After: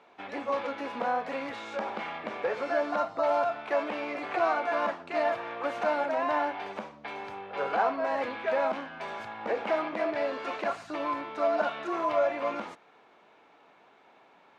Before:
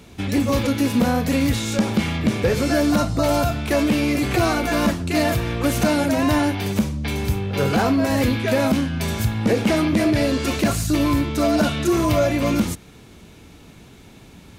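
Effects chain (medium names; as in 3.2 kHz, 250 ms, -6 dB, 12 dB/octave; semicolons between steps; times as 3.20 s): ladder band-pass 1 kHz, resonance 25%; trim +7 dB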